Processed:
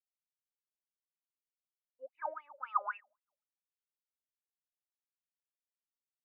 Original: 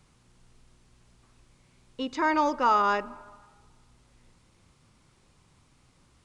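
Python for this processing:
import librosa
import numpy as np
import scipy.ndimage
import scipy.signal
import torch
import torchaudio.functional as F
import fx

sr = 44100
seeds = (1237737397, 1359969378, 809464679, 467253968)

y = fx.power_curve(x, sr, exponent=1.4)
y = fx.wah_lfo(y, sr, hz=3.8, low_hz=530.0, high_hz=2700.0, q=21.0)
y = fx.spectral_expand(y, sr, expansion=1.5)
y = F.gain(torch.from_numpy(y), 6.0).numpy()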